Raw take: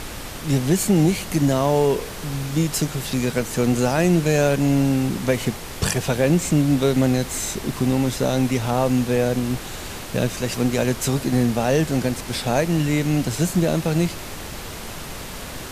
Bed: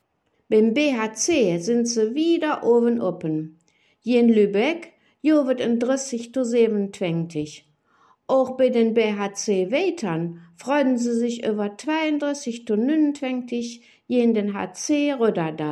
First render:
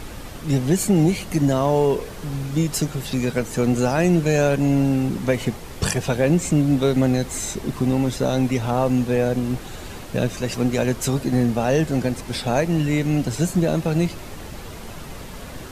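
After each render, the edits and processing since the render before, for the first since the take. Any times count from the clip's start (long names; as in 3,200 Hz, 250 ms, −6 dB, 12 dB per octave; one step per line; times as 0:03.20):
broadband denoise 7 dB, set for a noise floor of −34 dBFS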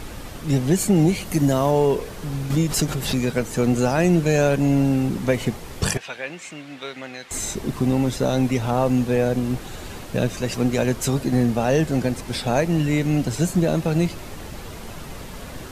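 0:01.25–0:01.71: high-shelf EQ 9,800 Hz +9 dB
0:02.50–0:03.19: background raised ahead of every attack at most 65 dB per second
0:05.97–0:07.31: resonant band-pass 2,300 Hz, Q 1.2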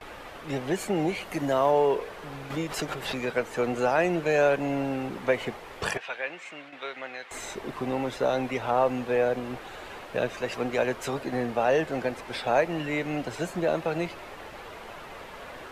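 noise gate with hold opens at −27 dBFS
three-way crossover with the lows and the highs turned down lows −17 dB, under 410 Hz, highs −15 dB, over 3,200 Hz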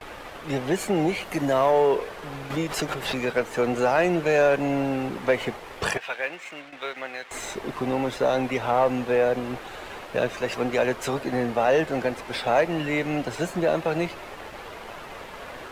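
leveller curve on the samples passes 1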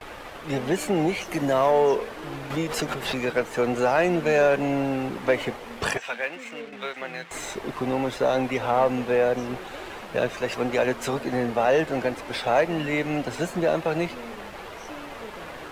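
mix in bed −22 dB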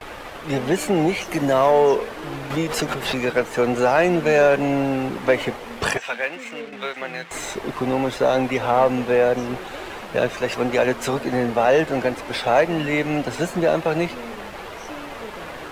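level +4 dB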